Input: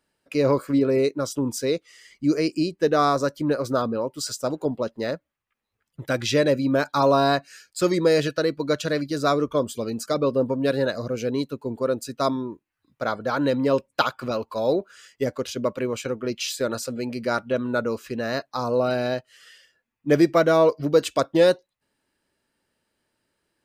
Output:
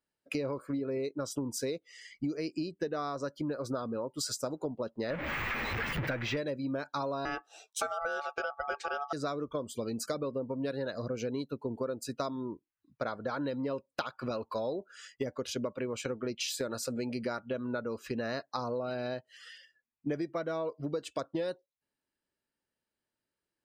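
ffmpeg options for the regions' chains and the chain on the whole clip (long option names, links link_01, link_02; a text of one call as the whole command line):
ffmpeg -i in.wav -filter_complex "[0:a]asettb=1/sr,asplit=3[link_01][link_02][link_03];[link_01]atrim=end=5.104[link_04];[link_02]atrim=start=5.1:end=6.37,asetpts=PTS-STARTPTS,afade=type=in:duration=0.004:curve=qsin,afade=type=out:start_time=1.266:duration=0.004:curve=qsin,aeval=exprs='val(0)+0.5*0.0562*sgn(val(0))':channel_layout=same,equalizer=frequency=2100:width=1:gain=13.5,deesser=0.95[link_05];[link_03]atrim=start=6.366[link_06];[link_04][link_05]acrossfade=duration=0.004:curve1=hsin:curve2=qsin[link_07];[link_07][link_06]acrossfade=duration=0.004:curve1=qsin:curve2=hsin,asettb=1/sr,asplit=3[link_08][link_09][link_10];[link_08]atrim=end=7.254[link_11];[link_09]atrim=start=7.25:end=9.13,asetpts=PTS-STARTPTS,afade=type=in:duration=0.004:curve=qsin,afade=type=out:start_time=1.876:duration=0.004:curve=qsin,deesser=0.35,lowshelf=frequency=480:gain=8.5,aeval=exprs='val(0)*sin(2*PI*1000*n/s)':channel_layout=same[link_12];[link_10]atrim=start=9.126[link_13];[link_11][link_12]acrossfade=duration=0.004:curve1=hsin:curve2=qsin[link_14];[link_14][link_13]acrossfade=duration=0.004:curve1=qsin:curve2=hsin,acompressor=threshold=-31dB:ratio=16,afftdn=noise_reduction=15:noise_floor=-57" out.wav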